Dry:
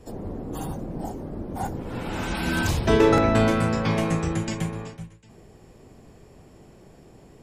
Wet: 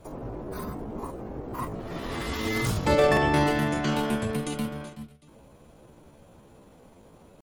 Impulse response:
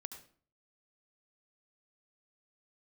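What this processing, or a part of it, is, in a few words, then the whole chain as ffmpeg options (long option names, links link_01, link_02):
chipmunk voice: -af "asetrate=58866,aresample=44100,atempo=0.749154,volume=-3dB"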